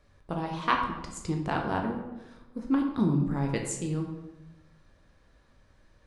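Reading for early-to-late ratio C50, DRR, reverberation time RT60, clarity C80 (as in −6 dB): 5.0 dB, 1.5 dB, 1.0 s, 7.5 dB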